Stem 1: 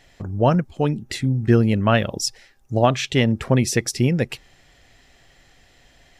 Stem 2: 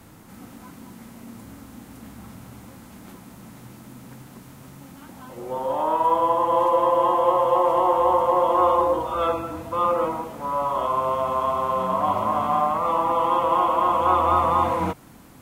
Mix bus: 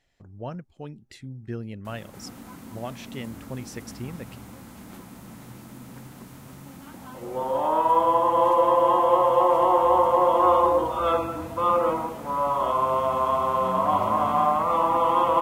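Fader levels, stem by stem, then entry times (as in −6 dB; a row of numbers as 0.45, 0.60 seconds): −18.0, 0.0 decibels; 0.00, 1.85 seconds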